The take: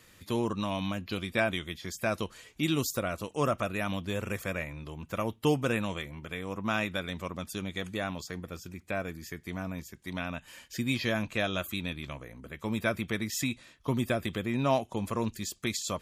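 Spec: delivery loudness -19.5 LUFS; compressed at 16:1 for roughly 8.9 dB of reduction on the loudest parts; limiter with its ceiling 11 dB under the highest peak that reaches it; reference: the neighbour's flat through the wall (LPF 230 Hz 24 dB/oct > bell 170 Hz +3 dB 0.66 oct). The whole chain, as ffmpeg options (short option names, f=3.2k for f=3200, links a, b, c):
-af "acompressor=threshold=-30dB:ratio=16,alimiter=level_in=6.5dB:limit=-24dB:level=0:latency=1,volume=-6.5dB,lowpass=f=230:w=0.5412,lowpass=f=230:w=1.3066,equalizer=f=170:t=o:w=0.66:g=3,volume=25.5dB"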